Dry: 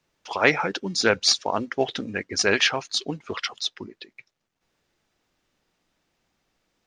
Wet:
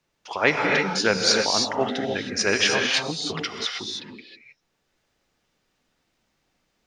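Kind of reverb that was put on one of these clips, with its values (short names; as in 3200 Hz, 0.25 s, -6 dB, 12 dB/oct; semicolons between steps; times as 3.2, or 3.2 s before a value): non-linear reverb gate 0.34 s rising, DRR 0.5 dB; gain -1.5 dB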